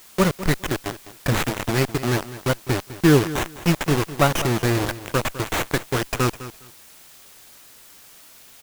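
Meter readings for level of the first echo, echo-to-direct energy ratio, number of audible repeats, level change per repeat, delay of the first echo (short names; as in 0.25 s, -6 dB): -15.0 dB, -15.0 dB, 2, -14.5 dB, 0.205 s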